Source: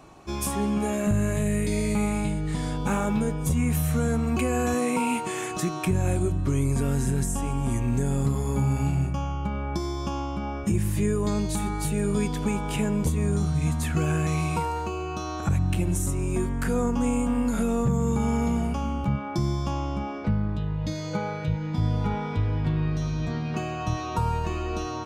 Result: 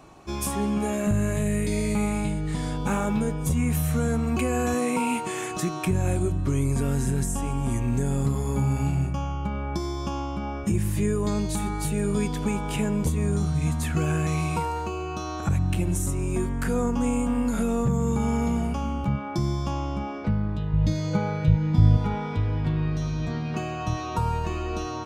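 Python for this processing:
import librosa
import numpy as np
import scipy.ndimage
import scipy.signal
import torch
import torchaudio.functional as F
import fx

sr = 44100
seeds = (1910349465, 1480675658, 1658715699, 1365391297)

y = fx.low_shelf(x, sr, hz=180.0, db=11.0, at=(20.73, 21.97))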